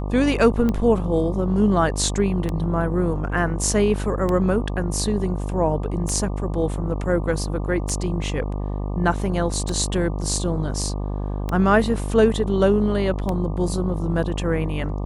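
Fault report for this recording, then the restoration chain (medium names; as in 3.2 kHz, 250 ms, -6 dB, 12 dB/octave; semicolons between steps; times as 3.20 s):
buzz 50 Hz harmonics 24 -26 dBFS
tick 33 1/3 rpm -12 dBFS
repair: de-click; de-hum 50 Hz, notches 24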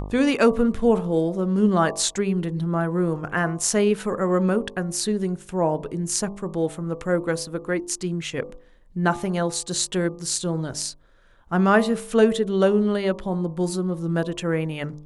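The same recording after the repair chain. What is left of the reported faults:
nothing left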